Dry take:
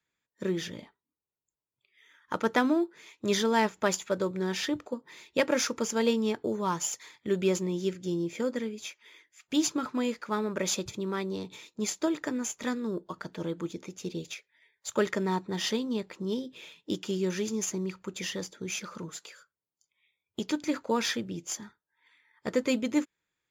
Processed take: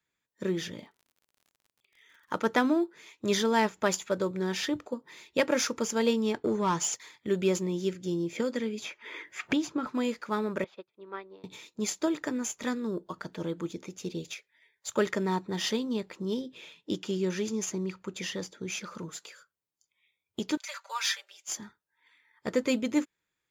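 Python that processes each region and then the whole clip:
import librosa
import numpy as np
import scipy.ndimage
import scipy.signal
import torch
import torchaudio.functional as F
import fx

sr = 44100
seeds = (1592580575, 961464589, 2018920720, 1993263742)

y = fx.highpass(x, sr, hz=97.0, slope=12, at=(0.74, 2.47), fade=0.02)
y = fx.dmg_crackle(y, sr, seeds[0], per_s=61.0, level_db=-51.0, at=(0.74, 2.47), fade=0.02)
y = fx.chain(y, sr, fx.lowpass(hz=8300.0, slope=12),
    fx.notch(hz=550.0, q=15.0),
    fx.leveller(passes=1), at=(6.34, 7.01))
y = fx.chain(y, sr, fx.highpass(hz=43.0, slope=12),
    fx.high_shelf(hz=3900.0, db=-11.0),
    fx.band_squash(depth_pct=100), at=(8.36, 9.87))
y = fx.chain(y, sr, fx.highpass(hz=460.0, slope=12),
    fx.air_absorb(metres=430.0),
    fx.upward_expand(threshold_db=-53.0, expansion=2.5), at=(10.64, 11.44))
y = fx.chain(y, sr, fx.highpass(hz=53.0, slope=12),
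    fx.high_shelf(hz=9400.0, db=-7.5), at=(16.41, 18.87))
y = fx.chain(y, sr, fx.bessel_highpass(hz=1200.0, order=8),
    fx.comb(ms=5.1, depth=0.77), at=(20.57, 21.48))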